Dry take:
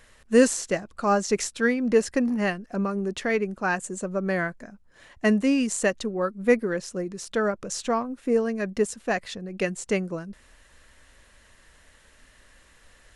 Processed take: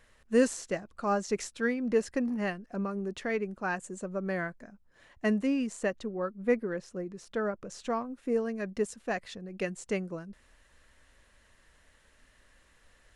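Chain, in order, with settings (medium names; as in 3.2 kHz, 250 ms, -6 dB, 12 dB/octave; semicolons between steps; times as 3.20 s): treble shelf 3.6 kHz -4.5 dB, from 5.47 s -11 dB, from 7.82 s -3 dB; trim -6.5 dB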